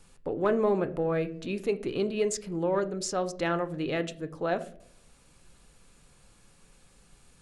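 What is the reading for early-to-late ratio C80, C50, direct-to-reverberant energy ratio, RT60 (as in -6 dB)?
20.0 dB, 16.5 dB, 10.0 dB, 0.65 s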